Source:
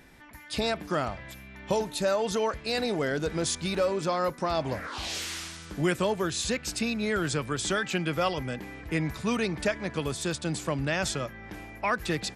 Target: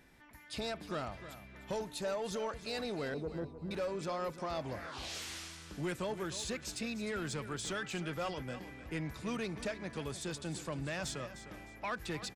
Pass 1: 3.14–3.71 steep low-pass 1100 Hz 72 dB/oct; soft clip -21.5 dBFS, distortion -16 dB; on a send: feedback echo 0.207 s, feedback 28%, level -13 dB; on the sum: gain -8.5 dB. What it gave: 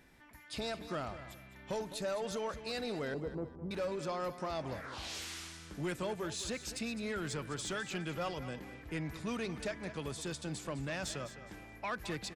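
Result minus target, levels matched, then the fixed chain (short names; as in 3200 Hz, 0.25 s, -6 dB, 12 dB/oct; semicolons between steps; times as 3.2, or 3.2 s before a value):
echo 98 ms early
3.14–3.71 steep low-pass 1100 Hz 72 dB/oct; soft clip -21.5 dBFS, distortion -16 dB; on a send: feedback echo 0.305 s, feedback 28%, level -13 dB; on the sum: gain -8.5 dB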